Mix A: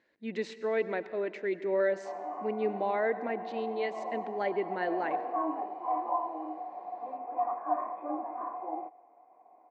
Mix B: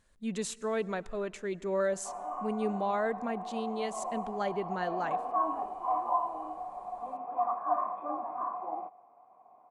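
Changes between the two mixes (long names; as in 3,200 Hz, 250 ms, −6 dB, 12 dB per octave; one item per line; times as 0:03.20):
speech: send −8.5 dB
master: remove loudspeaker in its box 290–4,200 Hz, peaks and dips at 320 Hz +10 dB, 490 Hz +3 dB, 1,200 Hz −9 dB, 2,000 Hz +8 dB, 3,300 Hz −6 dB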